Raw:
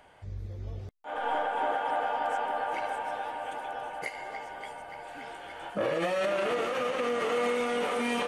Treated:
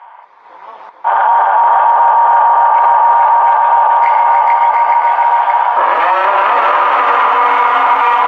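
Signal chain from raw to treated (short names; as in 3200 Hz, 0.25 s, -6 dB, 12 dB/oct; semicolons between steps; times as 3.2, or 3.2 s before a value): LPF 2200 Hz 12 dB/oct; AGC gain up to 8.5 dB; ladder high-pass 910 Hz, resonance 80%; AM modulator 210 Hz, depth 45%; bouncing-ball echo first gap 0.44 s, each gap 0.6×, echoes 5; maximiser +28.5 dB; gain -1 dB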